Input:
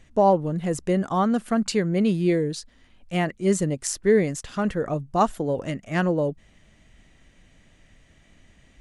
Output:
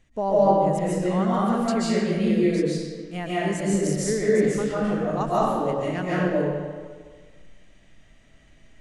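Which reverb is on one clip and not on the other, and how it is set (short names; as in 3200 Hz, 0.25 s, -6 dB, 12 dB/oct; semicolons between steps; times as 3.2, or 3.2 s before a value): digital reverb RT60 1.6 s, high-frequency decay 0.75×, pre-delay 0.105 s, DRR -8.5 dB; gain -8.5 dB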